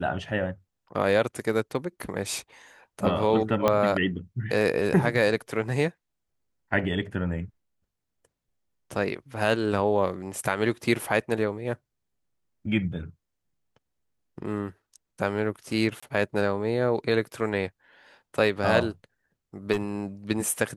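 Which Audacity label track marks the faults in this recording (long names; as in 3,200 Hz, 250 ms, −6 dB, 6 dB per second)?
3.680000	3.680000	click −9 dBFS
16.000000	16.020000	drop-out 25 ms
19.720000	19.820000	clipping −21.5 dBFS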